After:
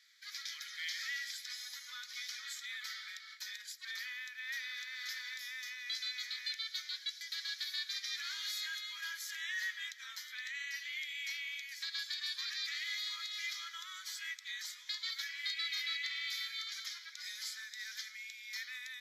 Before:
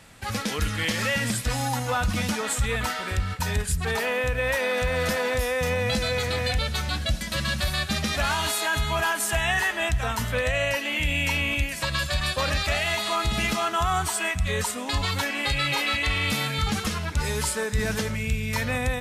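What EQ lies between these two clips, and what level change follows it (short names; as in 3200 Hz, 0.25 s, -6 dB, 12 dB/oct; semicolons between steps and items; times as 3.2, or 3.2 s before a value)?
Chebyshev high-pass 2300 Hz, order 3; high shelf 10000 Hz -10 dB; fixed phaser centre 2700 Hz, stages 6; -4.5 dB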